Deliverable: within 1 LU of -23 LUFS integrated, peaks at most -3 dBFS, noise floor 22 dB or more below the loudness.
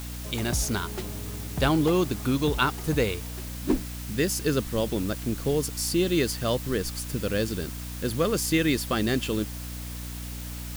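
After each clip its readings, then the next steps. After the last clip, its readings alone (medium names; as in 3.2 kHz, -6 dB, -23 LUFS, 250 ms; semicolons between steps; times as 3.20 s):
hum 60 Hz; highest harmonic 300 Hz; hum level -34 dBFS; noise floor -36 dBFS; noise floor target -50 dBFS; loudness -27.5 LUFS; peak level -9.5 dBFS; loudness target -23.0 LUFS
-> hum notches 60/120/180/240/300 Hz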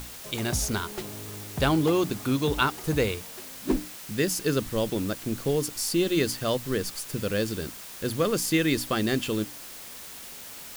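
hum not found; noise floor -42 dBFS; noise floor target -50 dBFS
-> noise reduction 8 dB, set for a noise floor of -42 dBFS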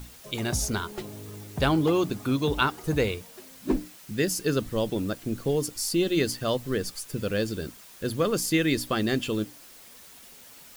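noise floor -50 dBFS; loudness -27.5 LUFS; peak level -10.0 dBFS; loudness target -23.0 LUFS
-> trim +4.5 dB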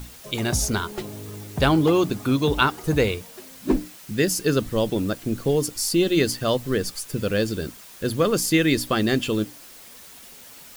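loudness -23.0 LUFS; peak level -5.5 dBFS; noise floor -45 dBFS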